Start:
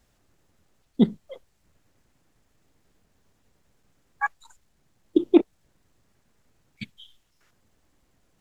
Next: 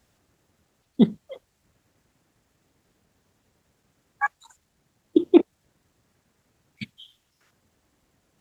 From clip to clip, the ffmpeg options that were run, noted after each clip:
-af "highpass=60,volume=1.5dB"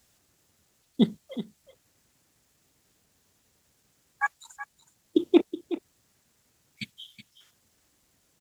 -af "highshelf=f=3k:g=12,aecho=1:1:372:0.224,volume=-4.5dB"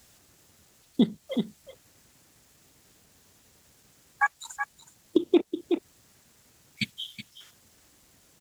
-af "acompressor=threshold=-30dB:ratio=2.5,volume=8dB"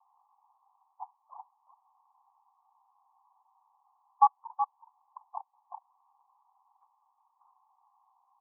-af "asuperpass=centerf=930:order=12:qfactor=2.5,volume=7.5dB"

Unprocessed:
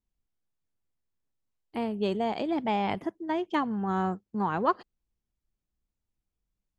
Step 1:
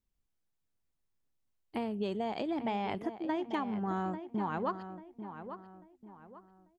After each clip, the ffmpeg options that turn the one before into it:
-filter_complex "[0:a]acompressor=threshold=-32dB:ratio=4,asplit=2[a][b];[b]adelay=842,lowpass=f=2.4k:p=1,volume=-10dB,asplit=2[c][d];[d]adelay=842,lowpass=f=2.4k:p=1,volume=0.37,asplit=2[e][f];[f]adelay=842,lowpass=f=2.4k:p=1,volume=0.37,asplit=2[g][h];[h]adelay=842,lowpass=f=2.4k:p=1,volume=0.37[i];[c][e][g][i]amix=inputs=4:normalize=0[j];[a][j]amix=inputs=2:normalize=0"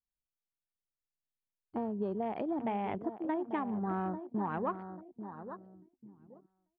-af "afwtdn=0.00501,highshelf=f=3.9k:g=-11.5"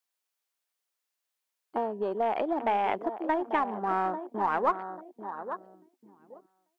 -filter_complex "[0:a]highpass=520,asplit=2[a][b];[b]aeval=exprs='clip(val(0),-1,0.0106)':c=same,volume=-9dB[c];[a][c]amix=inputs=2:normalize=0,volume=8.5dB"

